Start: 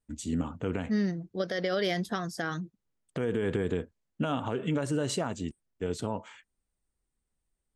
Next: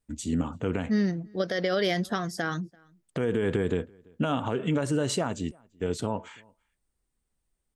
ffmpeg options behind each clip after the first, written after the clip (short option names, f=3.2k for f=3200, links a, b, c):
-filter_complex "[0:a]asplit=2[a][b];[b]adelay=338.2,volume=-28dB,highshelf=f=4k:g=-7.61[c];[a][c]amix=inputs=2:normalize=0,volume=3dB"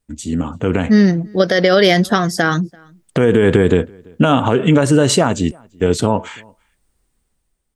-af "dynaudnorm=f=190:g=7:m=8dB,volume=6.5dB"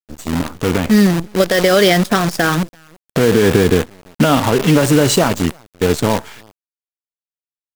-af "acrusher=bits=4:dc=4:mix=0:aa=0.000001"